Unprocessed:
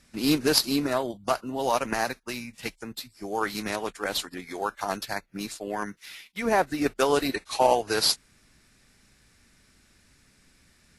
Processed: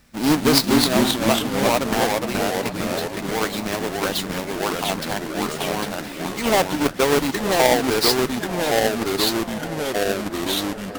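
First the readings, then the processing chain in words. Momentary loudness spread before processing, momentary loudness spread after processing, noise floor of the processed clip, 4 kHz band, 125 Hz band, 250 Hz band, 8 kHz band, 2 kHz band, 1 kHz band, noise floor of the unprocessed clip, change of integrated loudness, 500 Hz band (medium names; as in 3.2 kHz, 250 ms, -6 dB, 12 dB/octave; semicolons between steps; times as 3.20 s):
14 LU, 9 LU, -32 dBFS, +7.5 dB, +11.5 dB, +9.0 dB, +7.5 dB, +8.0 dB, +5.5 dB, -62 dBFS, +6.0 dB, +7.5 dB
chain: square wave that keeps the level; ever faster or slower copies 188 ms, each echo -2 st, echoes 3; feedback echo behind a low-pass 943 ms, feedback 62%, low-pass 2 kHz, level -14.5 dB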